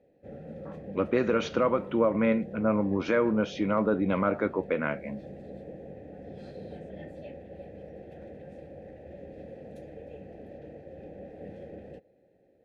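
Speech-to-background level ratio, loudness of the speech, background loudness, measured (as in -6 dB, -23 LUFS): 17.0 dB, -27.5 LUFS, -44.5 LUFS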